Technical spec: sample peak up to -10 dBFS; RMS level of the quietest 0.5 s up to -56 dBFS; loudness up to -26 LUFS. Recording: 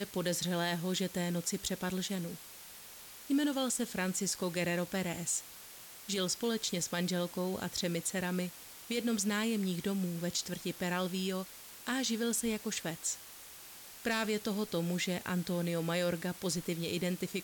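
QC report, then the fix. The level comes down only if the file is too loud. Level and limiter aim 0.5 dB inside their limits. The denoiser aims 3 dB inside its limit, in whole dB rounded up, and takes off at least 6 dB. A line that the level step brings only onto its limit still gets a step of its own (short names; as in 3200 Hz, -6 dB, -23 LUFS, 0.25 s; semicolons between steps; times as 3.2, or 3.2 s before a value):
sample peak -22.0 dBFS: OK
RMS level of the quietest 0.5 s -51 dBFS: fail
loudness -34.5 LUFS: OK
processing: denoiser 8 dB, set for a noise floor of -51 dBFS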